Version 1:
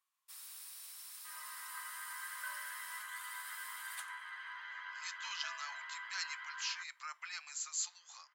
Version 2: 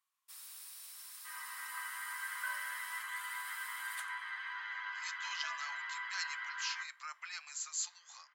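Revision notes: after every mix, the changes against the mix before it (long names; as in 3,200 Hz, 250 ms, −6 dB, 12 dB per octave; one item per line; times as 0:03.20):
reverb: on, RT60 0.40 s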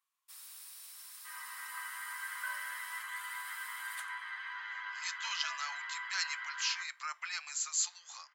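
speech +5.5 dB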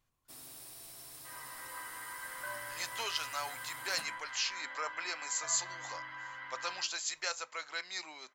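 speech: entry −2.25 s
second sound −4.0 dB
master: remove inverse Chebyshev high-pass filter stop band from 240 Hz, stop band 70 dB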